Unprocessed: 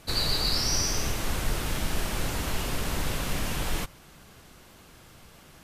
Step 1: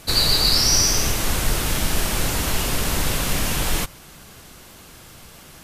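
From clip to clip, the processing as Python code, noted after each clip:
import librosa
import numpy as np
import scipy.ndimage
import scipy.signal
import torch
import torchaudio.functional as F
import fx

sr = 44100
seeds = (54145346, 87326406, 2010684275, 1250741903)

y = fx.high_shelf(x, sr, hz=4300.0, db=6.0)
y = F.gain(torch.from_numpy(y), 6.5).numpy()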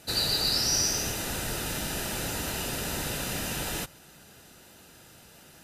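y = fx.notch_comb(x, sr, f0_hz=1100.0)
y = F.gain(torch.from_numpy(y), -7.0).numpy()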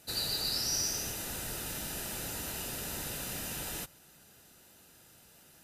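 y = fx.high_shelf(x, sr, hz=8300.0, db=8.0)
y = F.gain(torch.from_numpy(y), -8.5).numpy()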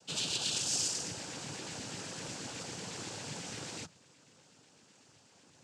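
y = fx.filter_lfo_notch(x, sr, shape='square', hz=8.1, low_hz=980.0, high_hz=2400.0, q=1.8)
y = fx.noise_vocoder(y, sr, seeds[0], bands=8)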